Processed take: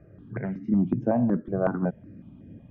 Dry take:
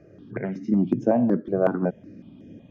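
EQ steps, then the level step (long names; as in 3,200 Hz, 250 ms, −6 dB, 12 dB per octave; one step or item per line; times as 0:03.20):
low-pass filter 1,200 Hz 12 dB per octave
parametric band 410 Hz −14.5 dB 2.8 octaves
+8.5 dB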